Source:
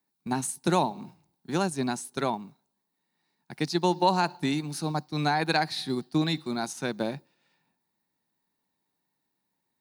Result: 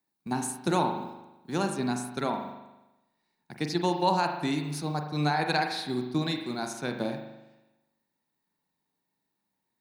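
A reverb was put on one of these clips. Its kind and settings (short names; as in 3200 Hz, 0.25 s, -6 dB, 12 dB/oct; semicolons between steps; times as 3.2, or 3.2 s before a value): spring tank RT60 1 s, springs 40 ms, chirp 40 ms, DRR 4.5 dB; gain -2.5 dB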